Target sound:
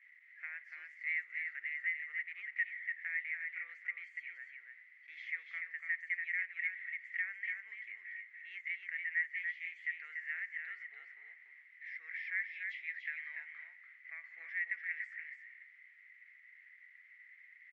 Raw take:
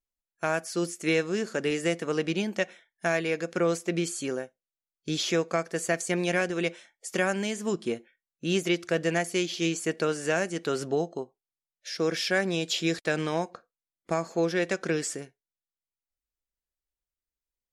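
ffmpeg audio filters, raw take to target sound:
ffmpeg -i in.wav -filter_complex "[0:a]aeval=exprs='val(0)+0.5*0.0119*sgn(val(0))':channel_layout=same,asuperpass=centerf=2000:order=4:qfactor=7.4,asplit=2[link_01][link_02];[link_02]acompressor=threshold=-54dB:ratio=6,volume=-1.5dB[link_03];[link_01][link_03]amix=inputs=2:normalize=0,aecho=1:1:289:0.562,volume=1.5dB" out.wav

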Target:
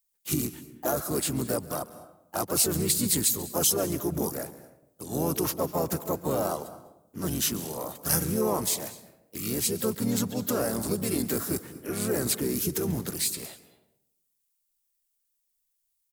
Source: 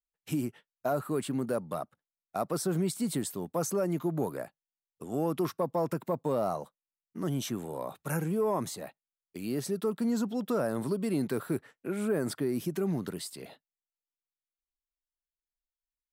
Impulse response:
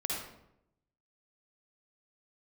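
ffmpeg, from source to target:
-filter_complex "[0:a]aemphasis=mode=production:type=75fm,asplit=2[link_01][link_02];[1:a]atrim=start_sample=2205,adelay=140[link_03];[link_02][link_03]afir=irnorm=-1:irlink=0,volume=-19dB[link_04];[link_01][link_04]amix=inputs=2:normalize=0,asplit=4[link_05][link_06][link_07][link_08];[link_06]asetrate=22050,aresample=44100,atempo=2,volume=-7dB[link_09];[link_07]asetrate=37084,aresample=44100,atempo=1.18921,volume=-6dB[link_10];[link_08]asetrate=52444,aresample=44100,atempo=0.840896,volume=-8dB[link_11];[link_05][link_09][link_10][link_11]amix=inputs=4:normalize=0"

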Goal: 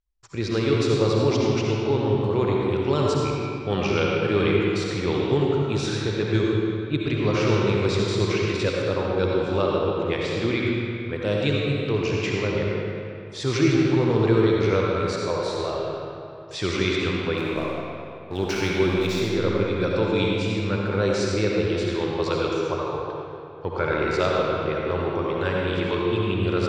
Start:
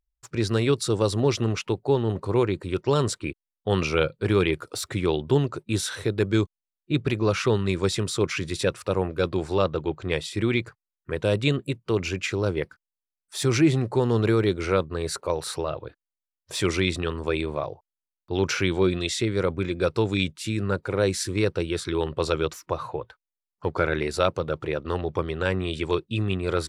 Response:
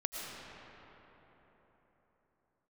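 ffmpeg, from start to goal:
-filter_complex "[0:a]lowpass=frequency=6300:width=0.5412,lowpass=frequency=6300:width=1.3066,asettb=1/sr,asplit=3[link_01][link_02][link_03];[link_01]atrim=end=17.374[link_04];[link_02]atrim=start=17.37:end=19.37,asetpts=PTS-STARTPTS,afade=type=in:duration=0.004:curve=qsin,afade=type=out:start_time=1.996:duration=0.004:curve=qsin,aeval=exprs='sgn(val(0))*max(abs(val(0))-0.0112,0)':channel_layout=same[link_05];[link_03]atrim=start=19.366[link_06];[link_04][link_05]acrossfade=duration=0.004:curve1=hsin:curve2=qsin[link_07];[link_07][link_06]acrossfade=duration=0.004:curve1=qsin:curve2=hsin[link_08];[1:a]atrim=start_sample=2205,asetrate=74970,aresample=44100[link_09];[link_08][link_09]afir=irnorm=-1:irlink=0,volume=3.5dB"

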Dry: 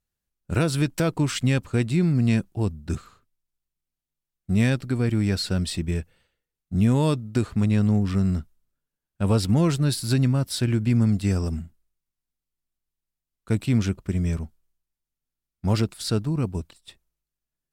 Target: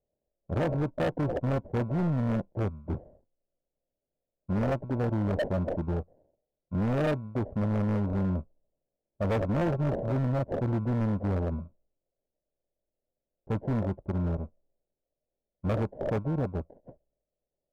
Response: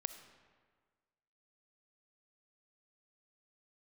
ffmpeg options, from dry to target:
-af "acrusher=samples=36:mix=1:aa=0.000001,lowpass=frequency=590:width_type=q:width=4.9,asoftclip=type=hard:threshold=-20dB,volume=-4.5dB"

